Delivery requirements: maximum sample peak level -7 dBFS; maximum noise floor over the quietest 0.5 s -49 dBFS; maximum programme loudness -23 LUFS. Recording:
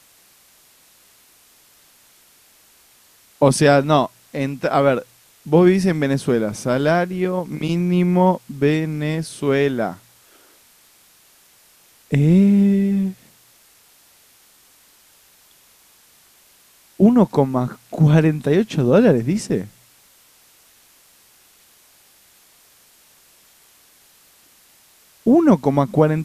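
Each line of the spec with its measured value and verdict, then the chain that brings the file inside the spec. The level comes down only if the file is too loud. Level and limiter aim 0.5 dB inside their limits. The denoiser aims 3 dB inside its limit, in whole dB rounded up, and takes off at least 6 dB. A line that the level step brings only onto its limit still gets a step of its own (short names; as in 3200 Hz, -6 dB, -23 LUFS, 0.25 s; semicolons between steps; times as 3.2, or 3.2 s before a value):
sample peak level -2.0 dBFS: fail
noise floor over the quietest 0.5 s -53 dBFS: OK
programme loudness -18.0 LUFS: fail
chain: gain -5.5 dB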